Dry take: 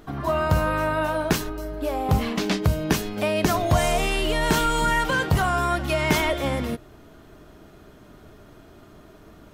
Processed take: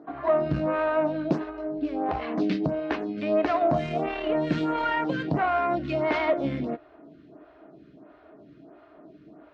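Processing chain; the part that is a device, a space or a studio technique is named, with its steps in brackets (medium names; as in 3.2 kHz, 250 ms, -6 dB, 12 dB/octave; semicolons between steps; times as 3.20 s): vibe pedal into a guitar amplifier (lamp-driven phase shifter 1.5 Hz; valve stage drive 18 dB, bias 0.6; cabinet simulation 98–3800 Hz, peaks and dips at 100 Hz -10 dB, 150 Hz +4 dB, 300 Hz +10 dB, 660 Hz +8 dB, 3.3 kHz -6 dB); 3.75–4.58 s: peaking EQ 5.2 kHz -3.5 dB 1.8 oct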